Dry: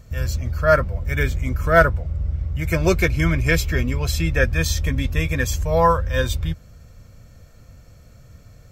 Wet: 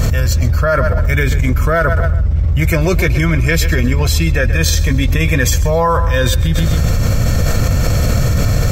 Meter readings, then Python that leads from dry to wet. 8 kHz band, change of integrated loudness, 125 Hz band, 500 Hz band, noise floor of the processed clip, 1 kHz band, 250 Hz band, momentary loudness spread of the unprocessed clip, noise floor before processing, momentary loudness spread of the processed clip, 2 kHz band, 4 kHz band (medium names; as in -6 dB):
+10.0 dB, +6.0 dB, +10.0 dB, +3.5 dB, -15 dBFS, +3.0 dB, +7.5 dB, 9 LU, -47 dBFS, 2 LU, +4.5 dB, +9.0 dB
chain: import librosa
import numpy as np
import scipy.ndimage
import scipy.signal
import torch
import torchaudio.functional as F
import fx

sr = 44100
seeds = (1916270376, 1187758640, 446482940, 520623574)

p1 = x + fx.echo_feedback(x, sr, ms=129, feedback_pct=36, wet_db=-17, dry=0)
p2 = fx.env_flatten(p1, sr, amount_pct=100)
y = p2 * 10.0 ** (-3.0 / 20.0)